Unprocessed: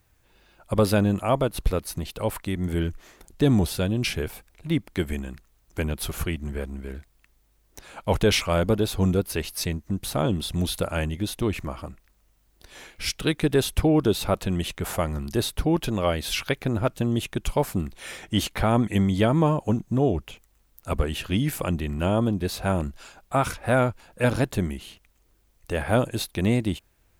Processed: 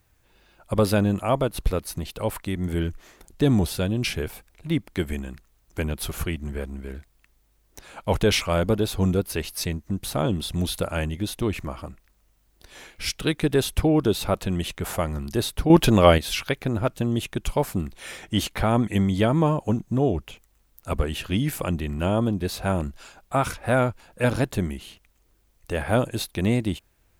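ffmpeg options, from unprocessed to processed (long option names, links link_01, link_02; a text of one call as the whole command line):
ffmpeg -i in.wav -filter_complex "[0:a]asplit=3[link_01][link_02][link_03];[link_01]atrim=end=15.702[link_04];[link_02]atrim=start=15.698:end=16.182,asetpts=PTS-STARTPTS,volume=9dB[link_05];[link_03]atrim=start=16.178[link_06];[link_04][link_05]acrossfade=duration=0.004:curve1=hsin:curve2=hsin[link_07];[link_07][link_06]acrossfade=duration=0.004:curve1=hsin:curve2=hsin" out.wav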